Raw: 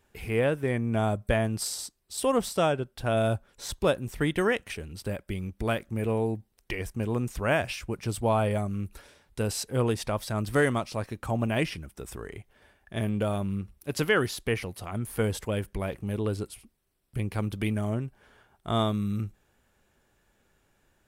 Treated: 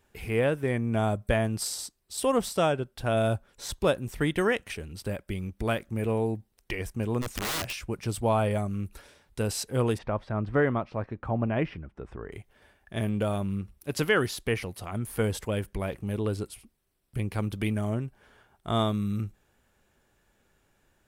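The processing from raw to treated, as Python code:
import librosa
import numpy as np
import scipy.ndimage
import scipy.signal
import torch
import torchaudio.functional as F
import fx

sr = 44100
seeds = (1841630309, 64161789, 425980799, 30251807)

y = fx.overflow_wrap(x, sr, gain_db=25.5, at=(7.21, 7.81), fade=0.02)
y = fx.lowpass(y, sr, hz=1700.0, slope=12, at=(9.97, 12.31), fade=0.02)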